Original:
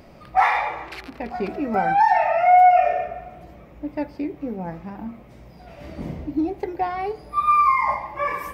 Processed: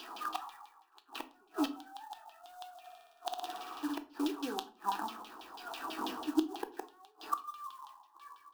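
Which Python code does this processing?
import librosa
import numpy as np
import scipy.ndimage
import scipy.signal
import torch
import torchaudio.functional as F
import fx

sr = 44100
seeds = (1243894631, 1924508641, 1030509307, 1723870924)

p1 = fx.cvsd(x, sr, bps=32000)
p2 = fx.filter_lfo_lowpass(p1, sr, shape='saw_down', hz=6.1, low_hz=760.0, high_hz=3400.0, q=4.5)
p3 = np.diff(p2, prepend=0.0)
p4 = fx.rider(p3, sr, range_db=3, speed_s=0.5)
p5 = p3 + (p4 * librosa.db_to_amplitude(-1.0))
p6 = fx.gate_flip(p5, sr, shuts_db=-32.0, range_db=-37)
p7 = fx.low_shelf_res(p6, sr, hz=180.0, db=-10.5, q=1.5)
p8 = fx.quant_float(p7, sr, bits=2)
p9 = fx.fixed_phaser(p8, sr, hz=570.0, stages=6)
p10 = fx.room_flutter(p9, sr, wall_m=10.1, rt60_s=0.99, at=(2.83, 3.95), fade=0.02)
p11 = fx.room_shoebox(p10, sr, seeds[0], volume_m3=260.0, walls='furnished', distance_m=0.66)
y = p11 * librosa.db_to_amplitude(13.5)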